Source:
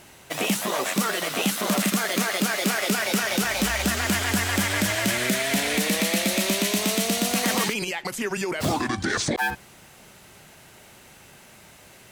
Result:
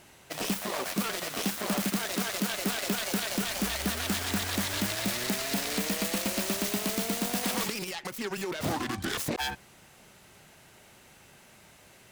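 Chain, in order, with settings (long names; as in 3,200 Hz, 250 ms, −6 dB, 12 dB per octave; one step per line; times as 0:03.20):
phase distortion by the signal itself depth 0.21 ms
level −5.5 dB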